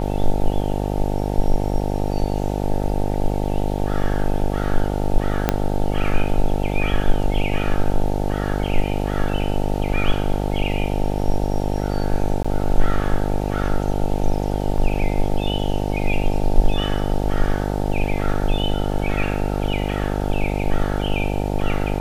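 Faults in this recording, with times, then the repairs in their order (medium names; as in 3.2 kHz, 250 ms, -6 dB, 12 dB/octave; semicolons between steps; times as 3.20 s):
buzz 50 Hz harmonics 18 -23 dBFS
5.49 s: pop -2 dBFS
12.43–12.45 s: dropout 15 ms
14.78 s: dropout 2.3 ms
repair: de-click; de-hum 50 Hz, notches 18; interpolate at 12.43 s, 15 ms; interpolate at 14.78 s, 2.3 ms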